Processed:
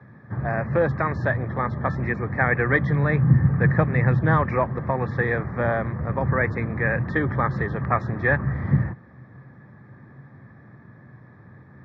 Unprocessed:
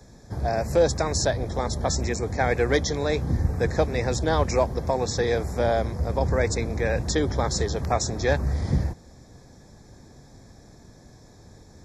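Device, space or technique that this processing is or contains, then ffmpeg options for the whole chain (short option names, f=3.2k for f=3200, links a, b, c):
bass cabinet: -filter_complex "[0:a]asettb=1/sr,asplit=3[a][b][c];[a]atrim=end=2.804[d];[b]atrim=start=2.8:end=4.39,asetpts=PTS-STARTPTS,afade=t=in:d=0.004:c=qsin,afade=t=out:st=1.586:d=0.004:c=qsin,equalizer=f=150:t=o:w=0.64:g=8.5[e];[c]atrim=start=4.386[f];[d][e]acrossfade=d=0.004:c1=hsin:c2=qsin[g];[g][f]acrossfade=d=0.004:c1=qsin:c2=hsin,highpass=f=88:w=0.5412,highpass=f=88:w=1.3066,equalizer=f=130:t=q:w=4:g=10,equalizer=f=200:t=q:w=4:g=4,equalizer=f=450:t=q:w=4:g=-4,equalizer=f=710:t=q:w=4:g=-4,equalizer=f=1.2k:t=q:w=4:g=10,equalizer=f=1.8k:t=q:w=4:g=10,lowpass=f=2.3k:w=0.5412,lowpass=f=2.3k:w=1.3066"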